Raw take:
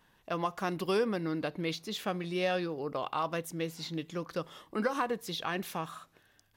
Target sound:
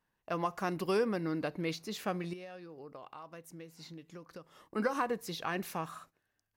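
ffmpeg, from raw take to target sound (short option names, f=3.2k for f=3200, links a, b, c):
-filter_complex "[0:a]agate=range=-14dB:threshold=-55dB:ratio=16:detection=peak,equalizer=f=3.4k:t=o:w=0.36:g=-7.5,asettb=1/sr,asplit=3[a][b][c];[a]atrim=end=2.334[d];[b]atrim=start=2.33:end=4.76,asetpts=PTS-STARTPTS,afade=t=in:d=0.004:c=qsin,afade=t=out:st=2.426:d=0.004:c=qsin,acompressor=threshold=-46dB:ratio=5[e];[c]atrim=start=4.756[f];[d][e]acrossfade=d=0.004:c1=hsin:c2=qsin[g];[g][f]acrossfade=d=0.004:c1=qsin:c2=hsin,volume=-1dB"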